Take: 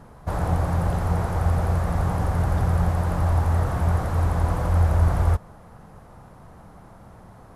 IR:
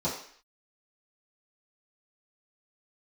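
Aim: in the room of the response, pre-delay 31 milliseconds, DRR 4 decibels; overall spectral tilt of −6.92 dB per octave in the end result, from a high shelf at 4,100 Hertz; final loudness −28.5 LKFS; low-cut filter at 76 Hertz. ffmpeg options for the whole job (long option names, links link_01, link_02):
-filter_complex "[0:a]highpass=76,highshelf=frequency=4100:gain=-6,asplit=2[link_01][link_02];[1:a]atrim=start_sample=2205,adelay=31[link_03];[link_02][link_03]afir=irnorm=-1:irlink=0,volume=-12.5dB[link_04];[link_01][link_04]amix=inputs=2:normalize=0,volume=-5dB"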